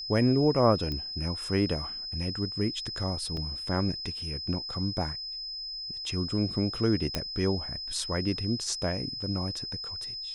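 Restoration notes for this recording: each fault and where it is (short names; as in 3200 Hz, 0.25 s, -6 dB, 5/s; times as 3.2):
tone 5100 Hz -35 dBFS
0.92 pop -22 dBFS
3.37 gap 2 ms
7.15 pop -13 dBFS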